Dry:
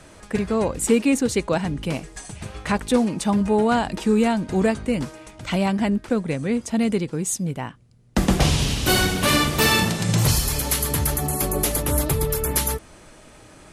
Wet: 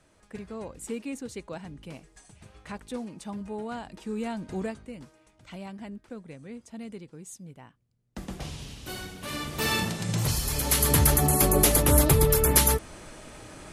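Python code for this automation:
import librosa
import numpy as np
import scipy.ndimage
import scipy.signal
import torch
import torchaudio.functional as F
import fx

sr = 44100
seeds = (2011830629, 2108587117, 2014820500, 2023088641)

y = fx.gain(x, sr, db=fx.line((3.98, -16.5), (4.51, -10.0), (4.93, -19.0), (9.2, -19.0), (9.72, -8.0), (10.36, -8.0), (10.91, 2.0)))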